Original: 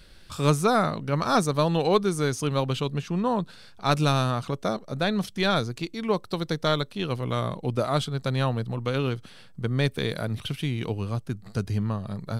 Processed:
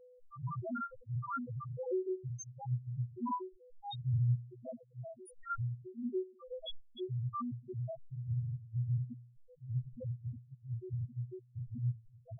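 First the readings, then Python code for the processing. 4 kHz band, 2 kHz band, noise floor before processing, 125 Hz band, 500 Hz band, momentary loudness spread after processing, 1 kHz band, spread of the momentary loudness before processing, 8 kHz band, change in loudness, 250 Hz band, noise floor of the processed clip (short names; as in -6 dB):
-22.0 dB, under -20 dB, -49 dBFS, -9.0 dB, -17.0 dB, 12 LU, -16.0 dB, 9 LU, under -15 dB, -13.5 dB, -16.0 dB, -63 dBFS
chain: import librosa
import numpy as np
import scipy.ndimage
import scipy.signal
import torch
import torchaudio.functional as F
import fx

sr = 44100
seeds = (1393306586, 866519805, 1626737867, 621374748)

y = fx.phase_scramble(x, sr, seeds[0], window_ms=50)
y = fx.phaser_stages(y, sr, stages=4, low_hz=210.0, high_hz=4900.0, hz=0.72, feedback_pct=10)
y = fx.high_shelf(y, sr, hz=7400.0, db=6.5)
y = fx.stiff_resonator(y, sr, f0_hz=120.0, decay_s=0.65, stiffness=0.008)
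y = y + 10.0 ** (-61.0 / 20.0) * np.sin(2.0 * np.pi * 500.0 * np.arange(len(y)) / sr)
y = fx.spec_topn(y, sr, count=1)
y = fx.dereverb_blind(y, sr, rt60_s=1.2)
y = F.gain(torch.from_numpy(y), 10.0).numpy()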